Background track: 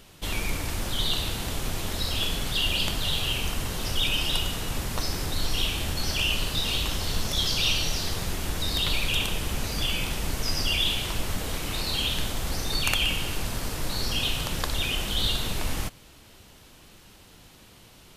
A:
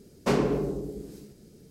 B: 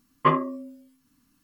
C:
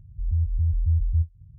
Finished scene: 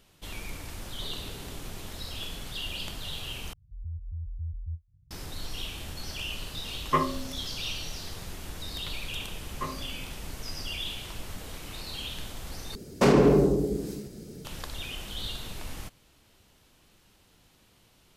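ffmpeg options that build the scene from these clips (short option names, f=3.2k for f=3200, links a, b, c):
-filter_complex "[1:a]asplit=2[a][b];[2:a]asplit=2[c][d];[0:a]volume=-10dB[e];[a]acompressor=threshold=-33dB:ratio=6:attack=3.2:release=140:knee=1:detection=peak[f];[b]alimiter=level_in=18dB:limit=-1dB:release=50:level=0:latency=1[g];[e]asplit=3[h][i][j];[h]atrim=end=3.534[k];[3:a]atrim=end=1.58,asetpts=PTS-STARTPTS,volume=-14dB[l];[i]atrim=start=5.106:end=12.754[m];[g]atrim=end=1.7,asetpts=PTS-STARTPTS,volume=-9dB[n];[j]atrim=start=14.446[o];[f]atrim=end=1.7,asetpts=PTS-STARTPTS,volume=-12.5dB,afade=t=in:d=0.004:c=hsin,afade=t=out:st=1.696:d=0.004:c=hsin,adelay=760[p];[c]atrim=end=1.43,asetpts=PTS-STARTPTS,volume=-4.5dB,afade=t=in:d=0.004:c=hsin,afade=t=out:st=1.426:d=0.004:c=hsin,adelay=6680[q];[d]atrim=end=1.43,asetpts=PTS-STARTPTS,volume=-15.5dB,afade=t=in:d=0.004:c=hsin,afade=t=out:st=1.426:d=0.004:c=hsin,adelay=9360[r];[k][l]acrossfade=d=0.004:c1=hsin:c2=hsin[s];[s][m]acrossfade=d=0.004:c1=hsin:c2=hsin[t];[t][n]acrossfade=d=0.004:c1=hsin:c2=hsin[u];[u][o]acrossfade=d=0.004:c1=hsin:c2=hsin[v];[v][p][q][r]amix=inputs=4:normalize=0"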